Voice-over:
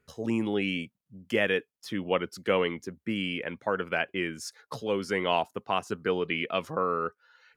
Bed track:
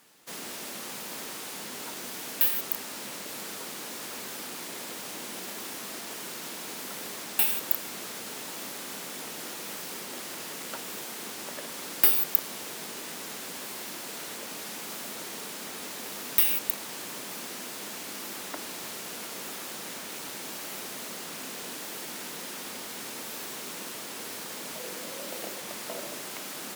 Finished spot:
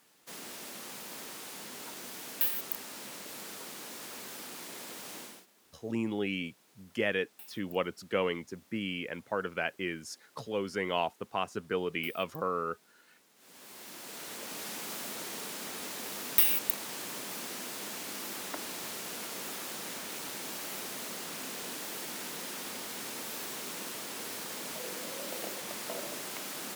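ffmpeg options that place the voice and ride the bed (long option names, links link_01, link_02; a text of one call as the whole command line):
ffmpeg -i stem1.wav -i stem2.wav -filter_complex "[0:a]adelay=5650,volume=-4.5dB[link_01];[1:a]volume=20dB,afade=type=out:start_time=5.18:duration=0.28:silence=0.0841395,afade=type=in:start_time=13.35:duration=1.31:silence=0.0530884[link_02];[link_01][link_02]amix=inputs=2:normalize=0" out.wav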